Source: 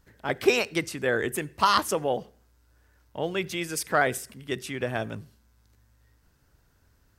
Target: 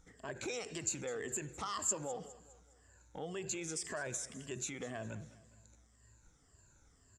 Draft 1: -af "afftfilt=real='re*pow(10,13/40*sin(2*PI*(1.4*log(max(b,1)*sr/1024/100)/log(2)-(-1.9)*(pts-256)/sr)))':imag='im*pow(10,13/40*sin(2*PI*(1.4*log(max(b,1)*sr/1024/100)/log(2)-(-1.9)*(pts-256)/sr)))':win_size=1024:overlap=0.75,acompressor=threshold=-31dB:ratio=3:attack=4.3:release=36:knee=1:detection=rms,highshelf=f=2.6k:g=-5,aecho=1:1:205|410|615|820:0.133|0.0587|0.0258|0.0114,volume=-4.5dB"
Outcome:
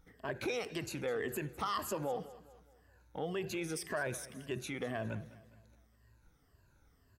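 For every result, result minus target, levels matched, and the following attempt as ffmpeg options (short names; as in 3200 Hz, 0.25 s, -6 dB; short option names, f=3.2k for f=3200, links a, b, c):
8000 Hz band -10.5 dB; compressor: peak gain reduction -5 dB
-af "afftfilt=real='re*pow(10,13/40*sin(2*PI*(1.4*log(max(b,1)*sr/1024/100)/log(2)-(-1.9)*(pts-256)/sr)))':imag='im*pow(10,13/40*sin(2*PI*(1.4*log(max(b,1)*sr/1024/100)/log(2)-(-1.9)*(pts-256)/sr)))':win_size=1024:overlap=0.75,acompressor=threshold=-31dB:ratio=3:attack=4.3:release=36:knee=1:detection=rms,lowpass=f=7.3k:t=q:w=16,highshelf=f=2.6k:g=-5,aecho=1:1:205|410|615|820:0.133|0.0587|0.0258|0.0114,volume=-4.5dB"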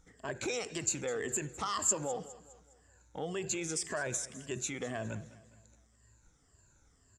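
compressor: peak gain reduction -5 dB
-af "afftfilt=real='re*pow(10,13/40*sin(2*PI*(1.4*log(max(b,1)*sr/1024/100)/log(2)-(-1.9)*(pts-256)/sr)))':imag='im*pow(10,13/40*sin(2*PI*(1.4*log(max(b,1)*sr/1024/100)/log(2)-(-1.9)*(pts-256)/sr)))':win_size=1024:overlap=0.75,acompressor=threshold=-38.5dB:ratio=3:attack=4.3:release=36:knee=1:detection=rms,lowpass=f=7.3k:t=q:w=16,highshelf=f=2.6k:g=-5,aecho=1:1:205|410|615|820:0.133|0.0587|0.0258|0.0114,volume=-4.5dB"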